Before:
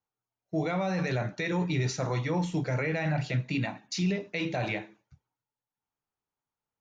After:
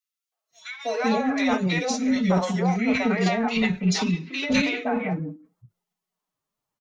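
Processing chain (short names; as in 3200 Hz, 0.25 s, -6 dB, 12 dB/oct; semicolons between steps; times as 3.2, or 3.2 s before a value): three bands offset in time highs, mids, lows 0.32/0.51 s, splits 360/1900 Hz; formant-preserving pitch shift +6.5 st; gain +8 dB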